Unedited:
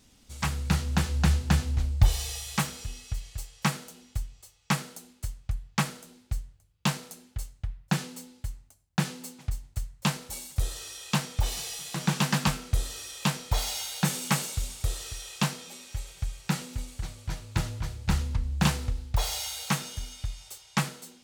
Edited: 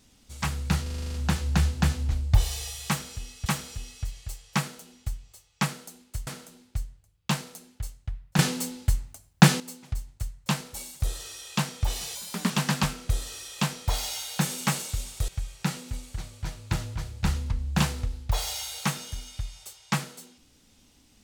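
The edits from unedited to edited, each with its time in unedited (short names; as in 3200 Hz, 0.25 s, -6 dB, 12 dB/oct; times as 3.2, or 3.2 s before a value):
0.82 stutter 0.04 s, 9 plays
2.55–3.14 loop, 2 plays
5.36–5.83 cut
7.95–9.16 gain +11.5 dB
11.71–12.14 speed 122%
14.92–16.13 cut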